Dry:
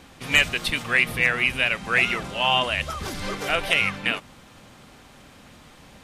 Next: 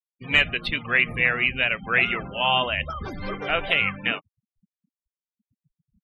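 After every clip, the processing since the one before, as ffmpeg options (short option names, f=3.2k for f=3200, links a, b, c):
-filter_complex "[0:a]afftdn=nr=23:nf=-33,afftfilt=real='re*gte(hypot(re,im),0.00631)':imag='im*gte(hypot(re,im),0.00631)':win_size=1024:overlap=0.75,acrossover=split=4700[a][b];[b]acompressor=threshold=-56dB:ratio=4:attack=1:release=60[c];[a][c]amix=inputs=2:normalize=0"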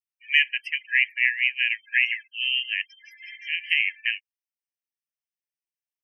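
-af "afftfilt=real='re*eq(mod(floor(b*sr/1024/1600),2),1)':imag='im*eq(mod(floor(b*sr/1024/1600),2),1)':win_size=1024:overlap=0.75"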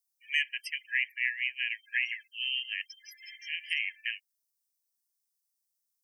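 -filter_complex "[0:a]acrossover=split=3000[a][b];[b]alimiter=limit=-24dB:level=0:latency=1:release=268[c];[a][c]amix=inputs=2:normalize=0,aexciter=amount=9.9:drive=1.4:freq=3.9k,volume=-7.5dB"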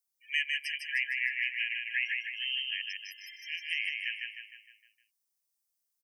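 -af "aecho=1:1:154|308|462|616|770|924:0.668|0.314|0.148|0.0694|0.0326|0.0153,volume=-2dB"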